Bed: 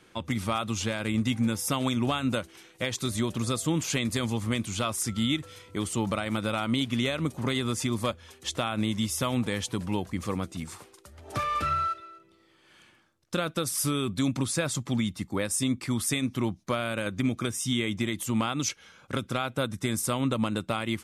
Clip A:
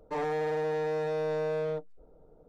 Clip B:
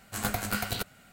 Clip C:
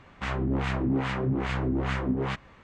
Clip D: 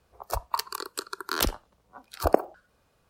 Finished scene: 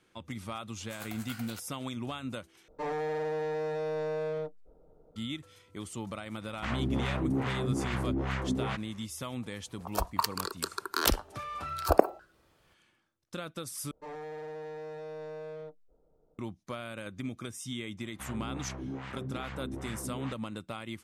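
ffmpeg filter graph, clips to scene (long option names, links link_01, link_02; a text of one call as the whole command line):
ffmpeg -i bed.wav -i cue0.wav -i cue1.wav -i cue2.wav -i cue3.wav -filter_complex "[1:a]asplit=2[link_01][link_02];[3:a]asplit=2[link_03][link_04];[0:a]volume=-10.5dB[link_05];[2:a]highpass=700[link_06];[link_05]asplit=3[link_07][link_08][link_09];[link_07]atrim=end=2.684[link_10];[link_01]atrim=end=2.48,asetpts=PTS-STARTPTS,volume=-2.5dB[link_11];[link_08]atrim=start=5.156:end=13.914[link_12];[link_02]atrim=end=2.48,asetpts=PTS-STARTPTS,volume=-11dB[link_13];[link_09]atrim=start=16.386[link_14];[link_06]atrim=end=1.12,asetpts=PTS-STARTPTS,volume=-13dB,afade=type=in:duration=0.004:curve=hsin,afade=type=out:start_time=1.116:duration=0.004:curve=hsin,adelay=770[link_15];[link_03]atrim=end=2.63,asetpts=PTS-STARTPTS,volume=-4dB,afade=type=in:duration=0.004:curve=hsin,afade=type=out:start_time=2.626:duration=0.004:curve=hsin,adelay=6410[link_16];[4:a]atrim=end=3.09,asetpts=PTS-STARTPTS,volume=-0.5dB,afade=type=in:duration=0.004:curve=hsin,afade=type=out:start_time=3.086:duration=0.004:curve=hsin,adelay=9650[link_17];[link_04]atrim=end=2.63,asetpts=PTS-STARTPTS,volume=-12.5dB,afade=type=in:duration=0.004:curve=hsin,afade=type=out:start_time=2.626:duration=0.004:curve=hsin,adelay=17980[link_18];[link_10][link_11]acrossfade=duration=0.004:curve1=hsin:curve2=hsin[link_19];[link_19][link_12]acrossfade=duration=0.004:curve1=hsin:curve2=hsin[link_20];[link_20][link_13]acrossfade=duration=0.004:curve1=hsin:curve2=hsin[link_21];[link_21][link_14]acrossfade=duration=0.004:curve1=hsin:curve2=hsin[link_22];[link_22][link_15][link_16][link_17][link_18]amix=inputs=5:normalize=0" out.wav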